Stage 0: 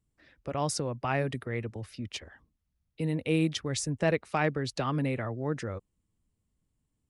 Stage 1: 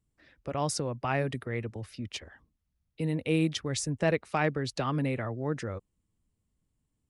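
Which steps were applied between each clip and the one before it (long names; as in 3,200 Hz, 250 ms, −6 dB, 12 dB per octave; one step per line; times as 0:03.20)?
no processing that can be heard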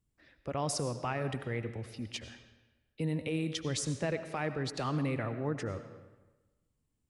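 brickwall limiter −22 dBFS, peak gain reduction 6.5 dB
comb and all-pass reverb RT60 1.2 s, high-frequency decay 0.8×, pre-delay 55 ms, DRR 10 dB
level −2 dB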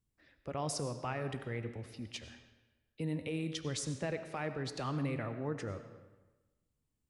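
flanger 0.34 Hz, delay 8.6 ms, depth 9.6 ms, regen +87%
level +1 dB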